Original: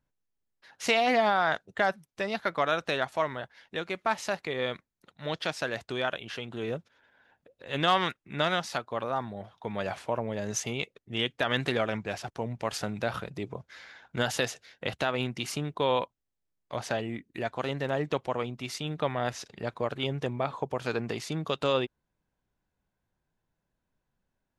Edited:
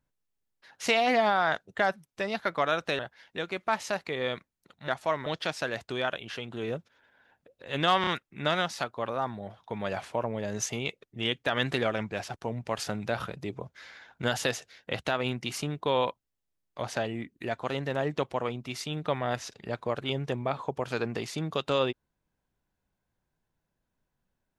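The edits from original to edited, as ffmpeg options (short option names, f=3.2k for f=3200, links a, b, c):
-filter_complex "[0:a]asplit=6[a][b][c][d][e][f];[a]atrim=end=2.992[g];[b]atrim=start=3.368:end=5.262[h];[c]atrim=start=2.988:end=3.372[i];[d]atrim=start=5.258:end=8.042[j];[e]atrim=start=8.008:end=8.042[k];[f]atrim=start=8.008[l];[g][h]acrossfade=d=0.004:c1=hsin:c2=hsin[m];[m][i]acrossfade=d=0.004:c1=hsin:c2=hsin[n];[n][j]acrossfade=d=0.004:c1=hsin:c2=hsin[o];[o][k]acrossfade=d=0.004:c1=hsin:c2=hsin[p];[p][l]acrossfade=d=0.004:c1=hsin:c2=hsin"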